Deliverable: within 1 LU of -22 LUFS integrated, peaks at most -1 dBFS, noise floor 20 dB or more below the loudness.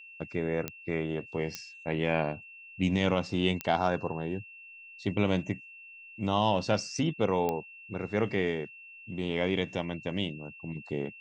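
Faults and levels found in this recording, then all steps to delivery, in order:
clicks found 4; steady tone 2.7 kHz; tone level -47 dBFS; loudness -31.5 LUFS; peak level -12.0 dBFS; loudness target -22.0 LUFS
-> de-click; band-stop 2.7 kHz, Q 30; trim +9.5 dB

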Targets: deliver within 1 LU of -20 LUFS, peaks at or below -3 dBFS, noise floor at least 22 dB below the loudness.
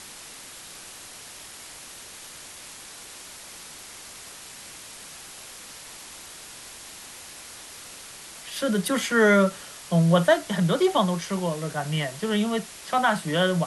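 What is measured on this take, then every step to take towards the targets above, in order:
noise floor -43 dBFS; noise floor target -46 dBFS; loudness -23.5 LUFS; peak level -7.5 dBFS; loudness target -20.0 LUFS
-> noise reduction 6 dB, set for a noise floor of -43 dBFS; trim +3.5 dB

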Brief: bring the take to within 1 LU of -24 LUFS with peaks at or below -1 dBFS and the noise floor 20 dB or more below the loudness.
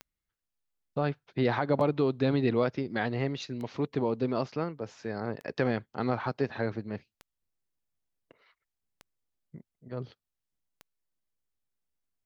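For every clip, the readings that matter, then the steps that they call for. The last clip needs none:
clicks found 7; loudness -31.0 LUFS; peak level -13.5 dBFS; loudness target -24.0 LUFS
-> de-click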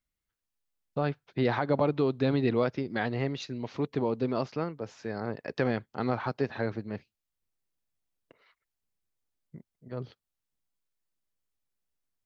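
clicks found 0; loudness -31.0 LUFS; peak level -13.5 dBFS; loudness target -24.0 LUFS
-> trim +7 dB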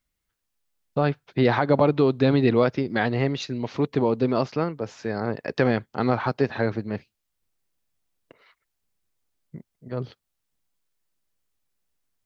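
loudness -24.0 LUFS; peak level -6.5 dBFS; noise floor -80 dBFS

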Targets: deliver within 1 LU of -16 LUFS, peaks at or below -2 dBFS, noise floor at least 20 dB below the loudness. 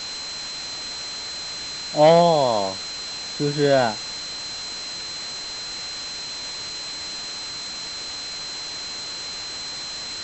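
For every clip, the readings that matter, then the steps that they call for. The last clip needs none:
steady tone 4.1 kHz; tone level -31 dBFS; noise floor -33 dBFS; noise floor target -45 dBFS; loudness -24.5 LUFS; peak level -4.0 dBFS; loudness target -16.0 LUFS
-> band-stop 4.1 kHz, Q 30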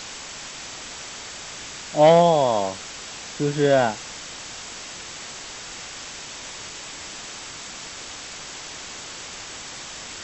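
steady tone not found; noise floor -37 dBFS; noise floor target -46 dBFS
-> noise reduction 9 dB, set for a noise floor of -37 dBFS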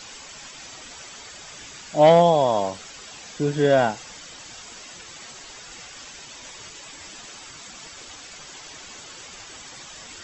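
noise floor -42 dBFS; loudness -19.0 LUFS; peak level -4.0 dBFS; loudness target -16.0 LUFS
-> trim +3 dB; peak limiter -2 dBFS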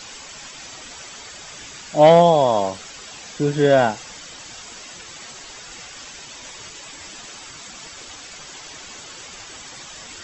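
loudness -16.5 LUFS; peak level -2.0 dBFS; noise floor -39 dBFS

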